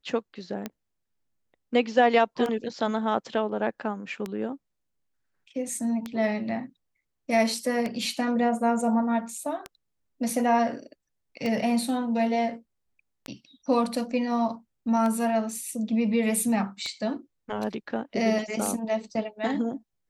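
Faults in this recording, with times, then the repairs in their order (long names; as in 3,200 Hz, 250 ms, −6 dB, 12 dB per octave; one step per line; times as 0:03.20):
scratch tick 33 1/3 rpm −17 dBFS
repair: click removal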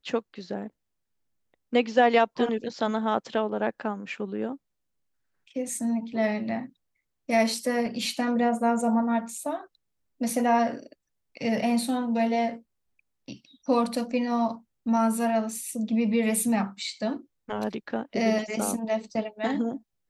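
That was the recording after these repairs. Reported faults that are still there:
none of them is left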